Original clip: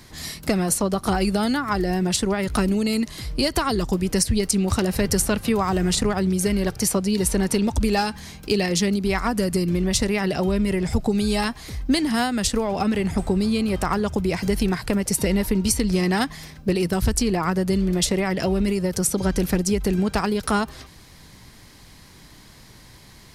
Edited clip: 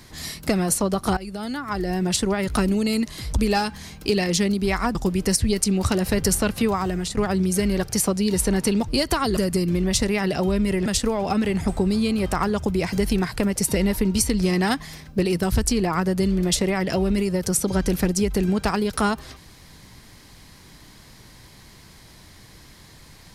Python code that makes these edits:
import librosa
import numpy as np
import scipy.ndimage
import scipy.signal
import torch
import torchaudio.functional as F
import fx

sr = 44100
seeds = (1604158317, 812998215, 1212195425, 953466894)

y = fx.edit(x, sr, fx.fade_in_from(start_s=1.17, length_s=0.98, floor_db=-16.5),
    fx.swap(start_s=3.33, length_s=0.49, other_s=7.75, other_length_s=1.62),
    fx.fade_out_to(start_s=5.52, length_s=0.52, floor_db=-10.0),
    fx.cut(start_s=10.86, length_s=1.5), tone=tone)